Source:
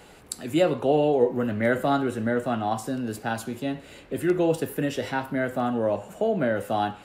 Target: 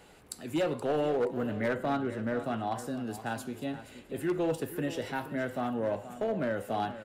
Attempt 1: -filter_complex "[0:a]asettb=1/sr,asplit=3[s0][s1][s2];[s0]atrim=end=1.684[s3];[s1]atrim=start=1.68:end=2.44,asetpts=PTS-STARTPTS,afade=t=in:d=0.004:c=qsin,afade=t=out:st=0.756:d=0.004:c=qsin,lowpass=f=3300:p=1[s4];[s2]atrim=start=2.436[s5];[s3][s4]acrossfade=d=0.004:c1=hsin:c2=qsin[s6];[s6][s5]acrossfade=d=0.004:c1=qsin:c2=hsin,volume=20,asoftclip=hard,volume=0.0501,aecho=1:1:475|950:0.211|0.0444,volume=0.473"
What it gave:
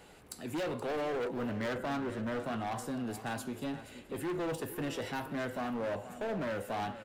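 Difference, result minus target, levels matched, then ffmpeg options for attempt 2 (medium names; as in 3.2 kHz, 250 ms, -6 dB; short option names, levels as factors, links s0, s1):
overload inside the chain: distortion +9 dB
-filter_complex "[0:a]asettb=1/sr,asplit=3[s0][s1][s2];[s0]atrim=end=1.684[s3];[s1]atrim=start=1.68:end=2.44,asetpts=PTS-STARTPTS,afade=t=in:d=0.004:c=qsin,afade=t=out:st=0.756:d=0.004:c=qsin,lowpass=f=3300:p=1[s4];[s2]atrim=start=2.436[s5];[s3][s4]acrossfade=d=0.004:c1=hsin:c2=qsin[s6];[s6][s5]acrossfade=d=0.004:c1=qsin:c2=hsin,volume=7.5,asoftclip=hard,volume=0.133,aecho=1:1:475|950:0.211|0.0444,volume=0.473"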